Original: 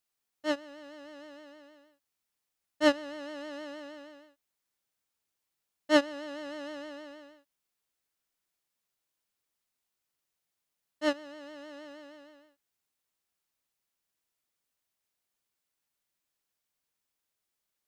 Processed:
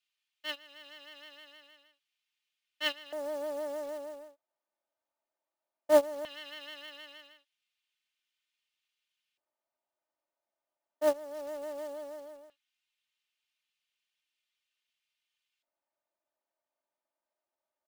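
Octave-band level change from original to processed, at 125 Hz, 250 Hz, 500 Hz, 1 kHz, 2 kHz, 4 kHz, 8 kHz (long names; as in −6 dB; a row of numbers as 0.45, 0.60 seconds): can't be measured, −9.5 dB, +2.0 dB, −2.0 dB, −5.0 dB, −0.5 dB, 0.0 dB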